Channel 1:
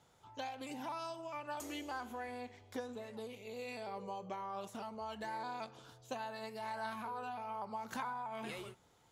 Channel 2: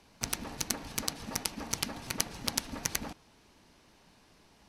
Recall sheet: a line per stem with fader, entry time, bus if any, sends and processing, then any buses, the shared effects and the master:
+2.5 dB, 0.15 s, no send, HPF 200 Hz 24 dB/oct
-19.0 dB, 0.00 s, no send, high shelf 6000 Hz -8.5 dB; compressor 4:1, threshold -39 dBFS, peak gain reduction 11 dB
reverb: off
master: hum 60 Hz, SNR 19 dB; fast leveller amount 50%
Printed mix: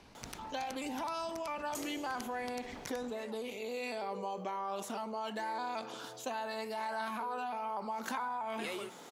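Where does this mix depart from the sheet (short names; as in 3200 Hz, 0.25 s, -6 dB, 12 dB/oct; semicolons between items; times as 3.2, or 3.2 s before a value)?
stem 2: missing compressor 4:1, threshold -39 dBFS, peak gain reduction 11 dB; master: missing hum 60 Hz, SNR 19 dB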